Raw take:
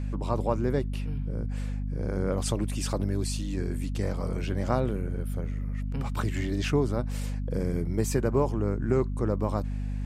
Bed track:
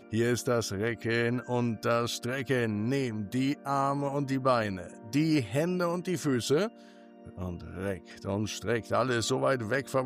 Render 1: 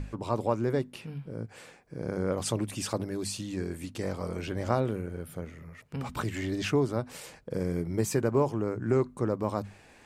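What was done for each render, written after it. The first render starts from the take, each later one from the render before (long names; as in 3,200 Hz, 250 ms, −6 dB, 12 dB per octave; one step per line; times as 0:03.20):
mains-hum notches 50/100/150/200/250 Hz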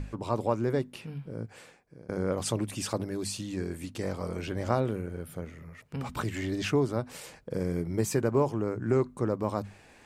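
0:01.49–0:02.09: fade out, to −21 dB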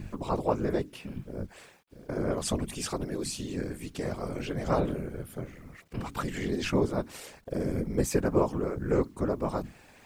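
bit reduction 11 bits
random phases in short frames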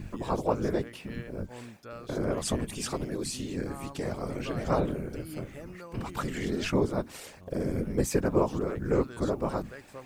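mix in bed track −16.5 dB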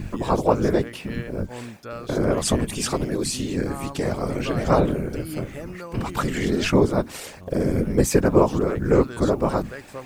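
level +8.5 dB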